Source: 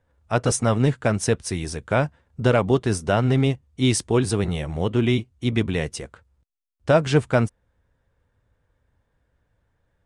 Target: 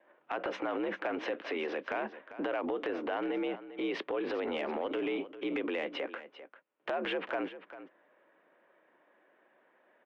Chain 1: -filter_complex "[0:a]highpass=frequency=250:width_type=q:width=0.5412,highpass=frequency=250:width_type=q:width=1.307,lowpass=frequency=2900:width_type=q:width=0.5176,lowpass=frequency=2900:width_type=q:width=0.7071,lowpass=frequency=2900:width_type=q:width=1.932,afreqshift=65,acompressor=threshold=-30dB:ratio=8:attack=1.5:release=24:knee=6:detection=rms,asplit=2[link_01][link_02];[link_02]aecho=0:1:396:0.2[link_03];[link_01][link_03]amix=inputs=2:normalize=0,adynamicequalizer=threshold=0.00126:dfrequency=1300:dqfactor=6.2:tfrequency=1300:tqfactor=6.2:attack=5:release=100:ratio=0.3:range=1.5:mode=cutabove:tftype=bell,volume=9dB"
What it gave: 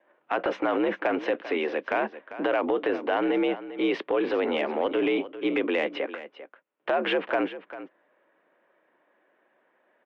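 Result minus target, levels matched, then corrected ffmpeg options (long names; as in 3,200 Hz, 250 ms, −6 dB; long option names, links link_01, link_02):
downward compressor: peak gain reduction −9 dB
-filter_complex "[0:a]highpass=frequency=250:width_type=q:width=0.5412,highpass=frequency=250:width_type=q:width=1.307,lowpass=frequency=2900:width_type=q:width=0.5176,lowpass=frequency=2900:width_type=q:width=0.7071,lowpass=frequency=2900:width_type=q:width=1.932,afreqshift=65,acompressor=threshold=-40.5dB:ratio=8:attack=1.5:release=24:knee=6:detection=rms,asplit=2[link_01][link_02];[link_02]aecho=0:1:396:0.2[link_03];[link_01][link_03]amix=inputs=2:normalize=0,adynamicequalizer=threshold=0.00126:dfrequency=1300:dqfactor=6.2:tfrequency=1300:tqfactor=6.2:attack=5:release=100:ratio=0.3:range=1.5:mode=cutabove:tftype=bell,volume=9dB"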